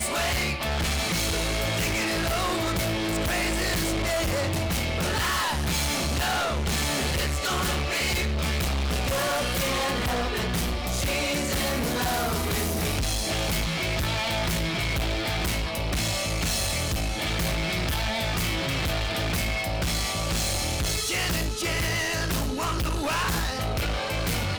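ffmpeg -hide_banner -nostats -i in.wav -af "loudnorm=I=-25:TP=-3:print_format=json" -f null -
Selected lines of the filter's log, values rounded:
"input_i" : "-26.1",
"input_tp" : "-19.9",
"input_lra" : "1.2",
"input_thresh" : "-36.1",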